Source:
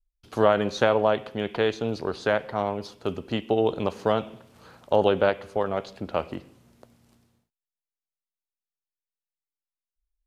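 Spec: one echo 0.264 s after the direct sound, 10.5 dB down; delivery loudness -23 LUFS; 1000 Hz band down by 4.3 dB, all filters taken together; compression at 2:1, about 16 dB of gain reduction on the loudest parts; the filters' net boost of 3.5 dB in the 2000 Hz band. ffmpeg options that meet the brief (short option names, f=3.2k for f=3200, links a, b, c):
-af "equalizer=f=1k:t=o:g=-8.5,equalizer=f=2k:t=o:g=8.5,acompressor=threshold=-47dB:ratio=2,aecho=1:1:264:0.299,volume=18dB"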